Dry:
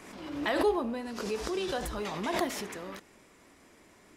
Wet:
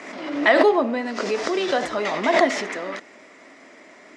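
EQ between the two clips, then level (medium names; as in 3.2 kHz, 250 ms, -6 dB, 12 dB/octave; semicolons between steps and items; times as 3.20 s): cabinet simulation 260–7000 Hz, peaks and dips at 260 Hz +6 dB, 630 Hz +9 dB, 1.3 kHz +3 dB, 2 kHz +9 dB; +8.5 dB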